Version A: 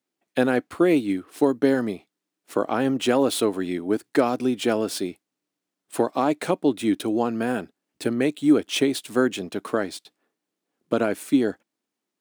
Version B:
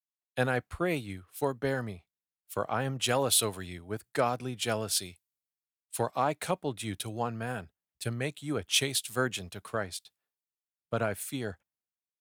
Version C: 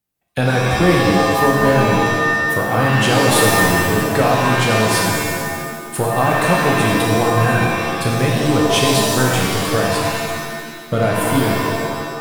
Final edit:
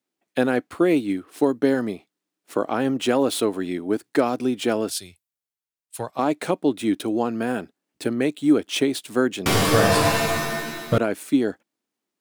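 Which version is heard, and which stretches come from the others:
A
4.9–6.19 from B
9.46–10.98 from C

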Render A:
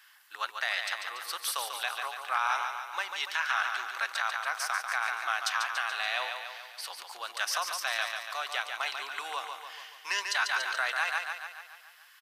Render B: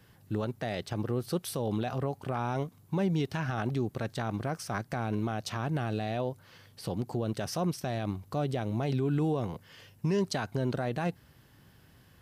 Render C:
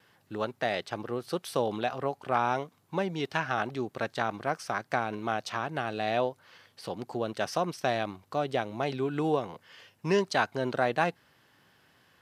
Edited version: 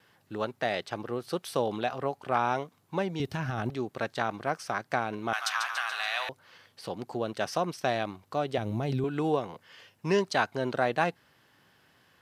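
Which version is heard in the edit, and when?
C
3.2–3.7 from B
5.33–6.29 from A
8.58–9.04 from B

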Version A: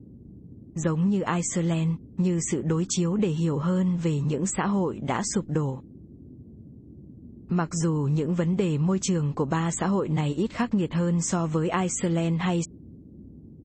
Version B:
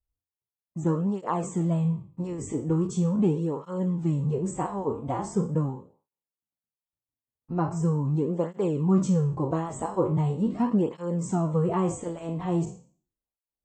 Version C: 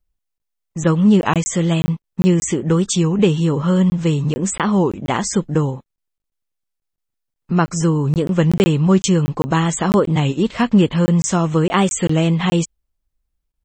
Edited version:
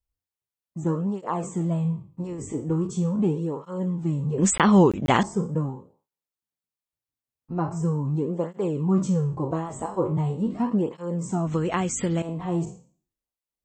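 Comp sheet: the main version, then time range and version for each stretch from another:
B
4.38–5.23 from C
11.47–12.22 from A

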